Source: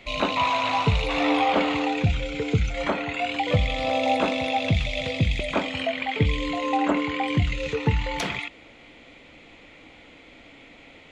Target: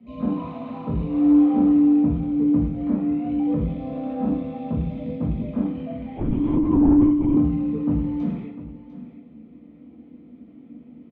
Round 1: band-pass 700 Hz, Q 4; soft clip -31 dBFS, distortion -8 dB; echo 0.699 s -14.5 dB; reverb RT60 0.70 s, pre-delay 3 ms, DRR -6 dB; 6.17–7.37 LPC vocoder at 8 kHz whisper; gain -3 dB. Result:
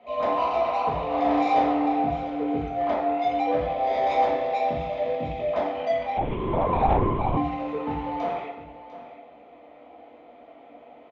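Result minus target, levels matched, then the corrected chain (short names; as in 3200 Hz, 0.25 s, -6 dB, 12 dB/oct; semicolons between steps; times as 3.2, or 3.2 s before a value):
500 Hz band +11.5 dB
band-pass 210 Hz, Q 4; soft clip -31 dBFS, distortion -9 dB; echo 0.699 s -14.5 dB; reverb RT60 0.70 s, pre-delay 3 ms, DRR -6 dB; 6.17–7.37 LPC vocoder at 8 kHz whisper; gain -3 dB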